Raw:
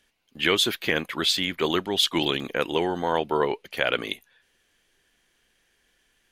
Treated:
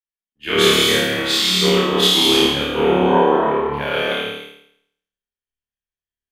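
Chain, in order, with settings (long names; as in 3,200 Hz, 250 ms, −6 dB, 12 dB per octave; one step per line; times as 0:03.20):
flutter between parallel walls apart 4.7 metres, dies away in 1.2 s
reverb whose tail is shaped and stops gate 360 ms flat, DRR −3.5 dB
multiband upward and downward expander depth 100%
level −1.5 dB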